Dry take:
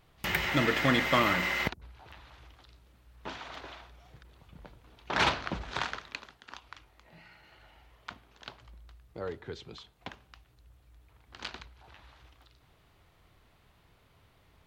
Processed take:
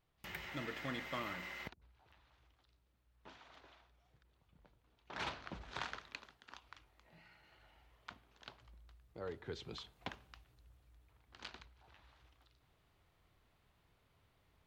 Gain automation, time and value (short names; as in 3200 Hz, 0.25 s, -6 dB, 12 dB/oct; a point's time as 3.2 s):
5.15 s -17 dB
5.92 s -8.5 dB
9.18 s -8.5 dB
9.78 s -0.5 dB
11.36 s -10 dB